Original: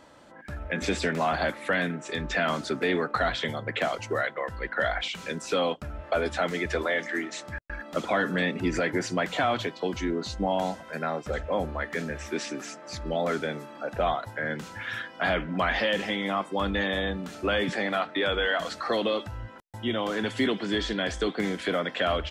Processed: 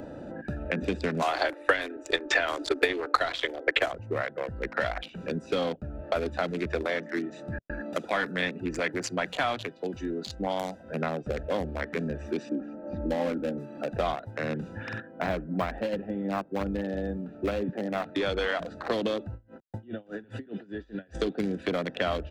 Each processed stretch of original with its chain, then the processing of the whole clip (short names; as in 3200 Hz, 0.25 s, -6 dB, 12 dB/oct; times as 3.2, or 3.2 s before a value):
1.22–3.92 steep high-pass 280 Hz 96 dB/oct + high shelf 2800 Hz +8.5 dB + transient shaper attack +12 dB, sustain +5 dB
7.93–10.84 tilt +3 dB/oct + three-band expander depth 40%
12.49–13.58 LPF 1100 Hz + comb 3.7 ms, depth 71%
15–18.03 LPF 1600 Hz + companded quantiser 8-bit + upward expander, over -40 dBFS
19.34–21.15 dynamic EQ 1600 Hz, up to +6 dB, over -43 dBFS, Q 1.2 + compressor, threshold -36 dBFS + dB-linear tremolo 4.9 Hz, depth 27 dB
whole clip: Wiener smoothing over 41 samples; three-band squash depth 70%